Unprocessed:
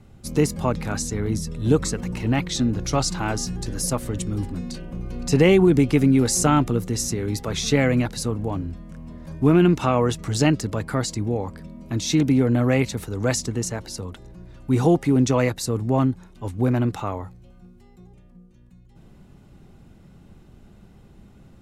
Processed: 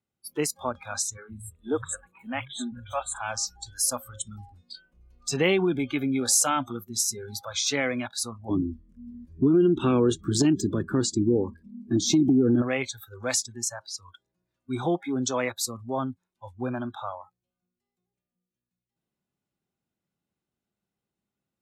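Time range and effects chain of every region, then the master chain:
1.17–3.21 s: Butterworth band-stop 5.3 kHz, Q 1.4 + three bands offset in time mids, highs, lows 40/120 ms, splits 170/3500 Hz
8.49–12.62 s: resonant low shelf 500 Hz +10 dB, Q 3 + compression 12:1, threshold -7 dBFS
whole clip: spectral noise reduction 27 dB; high-pass 130 Hz 6 dB/octave; tilt EQ +2 dB/octave; trim -4 dB

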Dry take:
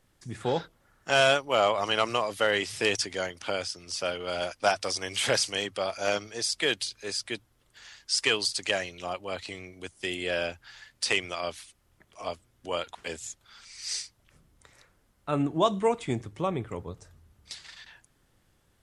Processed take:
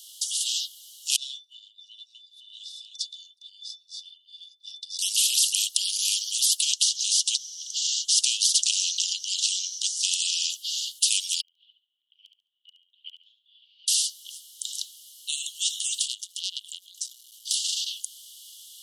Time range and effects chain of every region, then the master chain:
1.16–4.99 s: pitch-class resonator A, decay 0.13 s + compression 3:1, threshold -45 dBFS + three bands expanded up and down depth 100%
6.62–10.50 s: compression 1.5:1, threshold -36 dBFS + resonant low-pass 5.9 kHz, resonance Q 11
11.41–13.88 s: Bessel low-pass 1.2 kHz, order 8 + inverted gate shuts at -28 dBFS, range -28 dB + feedback delay 70 ms, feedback 28%, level -8 dB
16.01–17.54 s: compression 1.5:1, threshold -52 dBFS + transformer saturation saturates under 2.5 kHz
whole clip: Chebyshev high-pass 2.9 kHz, order 10; spectrum-flattening compressor 4:1; trim +6.5 dB

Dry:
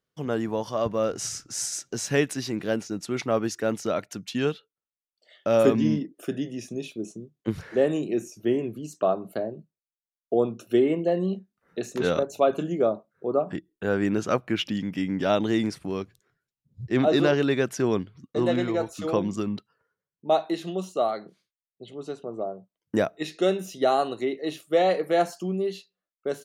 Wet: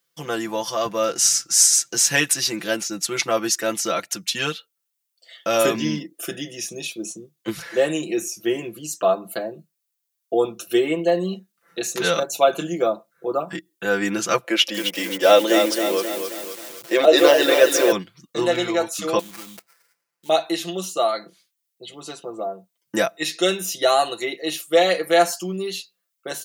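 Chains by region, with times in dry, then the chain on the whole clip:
14.44–17.92 s: high-pass 250 Hz 24 dB/octave + peaking EQ 540 Hz +14.5 dB 0.51 oct + bit-crushed delay 265 ms, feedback 55%, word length 7-bit, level -6.5 dB
19.19–20.29 s: tilt shelf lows -5 dB, about 1.1 kHz + compression 2.5:1, threshold -44 dBFS + sample-rate reducer 3.5 kHz, jitter 20%
whole clip: tilt EQ +3.5 dB/octave; comb 5.9 ms, depth 84%; trim +3.5 dB

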